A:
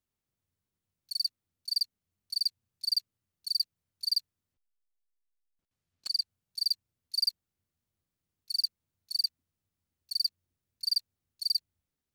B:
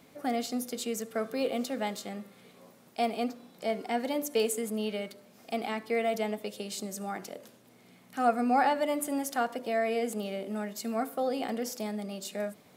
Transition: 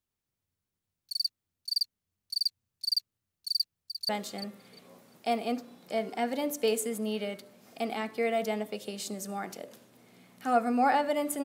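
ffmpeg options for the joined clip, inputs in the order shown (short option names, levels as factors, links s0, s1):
-filter_complex "[0:a]apad=whole_dur=11.44,atrim=end=11.44,atrim=end=4.092[s0];[1:a]atrim=start=1.808:end=9.16[s1];[s0][s1]acrossfade=d=0.004:c1=hsin:c2=hsin,asplit=2[s2][s3];[s3]afade=t=in:st=3.53:d=0.01,afade=t=out:st=4.09:d=0.01,aecho=0:1:350|700|1050:0.298538|0.0597077|0.0119415[s4];[s2][s4]amix=inputs=2:normalize=0"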